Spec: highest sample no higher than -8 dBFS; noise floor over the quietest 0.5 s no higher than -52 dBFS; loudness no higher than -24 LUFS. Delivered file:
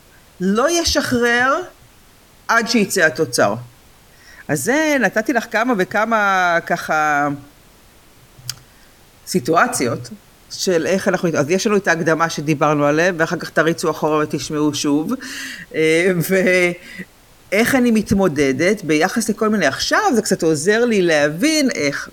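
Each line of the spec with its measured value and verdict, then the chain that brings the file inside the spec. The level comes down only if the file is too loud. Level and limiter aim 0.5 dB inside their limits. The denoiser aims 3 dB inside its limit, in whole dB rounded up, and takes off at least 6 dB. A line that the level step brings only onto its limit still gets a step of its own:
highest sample -1.5 dBFS: fail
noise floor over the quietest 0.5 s -48 dBFS: fail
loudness -17.0 LUFS: fail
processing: gain -7.5 dB

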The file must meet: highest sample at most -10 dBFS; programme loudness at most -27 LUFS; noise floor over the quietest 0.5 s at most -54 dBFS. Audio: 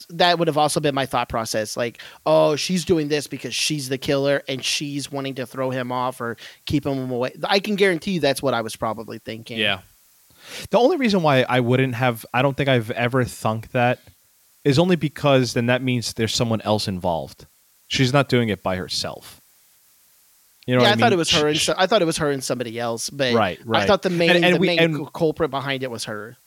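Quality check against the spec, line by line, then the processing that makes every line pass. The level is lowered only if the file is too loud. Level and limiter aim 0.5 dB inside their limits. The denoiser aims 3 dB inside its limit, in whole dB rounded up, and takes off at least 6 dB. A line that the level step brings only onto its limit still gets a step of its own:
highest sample -5.0 dBFS: fail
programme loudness -21.0 LUFS: fail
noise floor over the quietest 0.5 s -58 dBFS: OK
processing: gain -6.5 dB

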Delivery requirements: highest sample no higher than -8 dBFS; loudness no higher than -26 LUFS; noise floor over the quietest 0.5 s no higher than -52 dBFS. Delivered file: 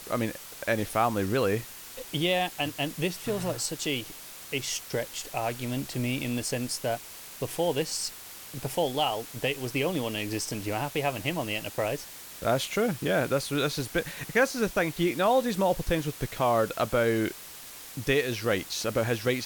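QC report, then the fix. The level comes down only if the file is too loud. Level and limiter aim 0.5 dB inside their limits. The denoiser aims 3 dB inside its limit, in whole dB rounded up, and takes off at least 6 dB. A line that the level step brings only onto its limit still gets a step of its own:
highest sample -11.5 dBFS: OK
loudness -29.0 LUFS: OK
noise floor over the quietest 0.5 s -44 dBFS: fail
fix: denoiser 11 dB, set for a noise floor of -44 dBFS

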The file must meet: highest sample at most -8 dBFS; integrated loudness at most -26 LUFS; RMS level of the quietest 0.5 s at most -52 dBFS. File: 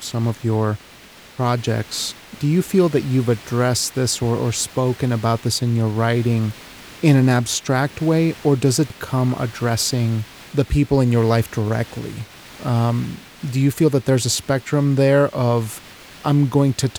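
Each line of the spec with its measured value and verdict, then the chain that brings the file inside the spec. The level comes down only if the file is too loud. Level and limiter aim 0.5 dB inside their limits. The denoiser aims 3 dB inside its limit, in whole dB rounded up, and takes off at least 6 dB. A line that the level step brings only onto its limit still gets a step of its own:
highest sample -3.5 dBFS: fail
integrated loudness -19.5 LUFS: fail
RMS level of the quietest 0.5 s -44 dBFS: fail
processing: denoiser 6 dB, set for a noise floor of -44 dBFS; gain -7 dB

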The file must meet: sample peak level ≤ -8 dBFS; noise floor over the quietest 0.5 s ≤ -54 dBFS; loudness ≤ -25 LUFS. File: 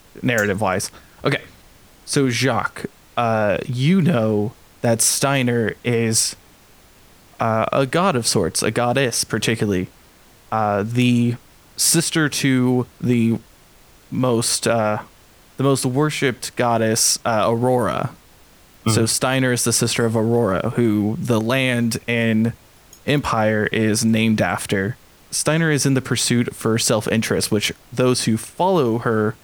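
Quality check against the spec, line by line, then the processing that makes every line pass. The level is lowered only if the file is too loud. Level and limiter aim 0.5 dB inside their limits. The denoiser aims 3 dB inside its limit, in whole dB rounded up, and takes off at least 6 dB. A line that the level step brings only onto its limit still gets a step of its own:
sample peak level -5.0 dBFS: fail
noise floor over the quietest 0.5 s -49 dBFS: fail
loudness -19.0 LUFS: fail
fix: gain -6.5 dB

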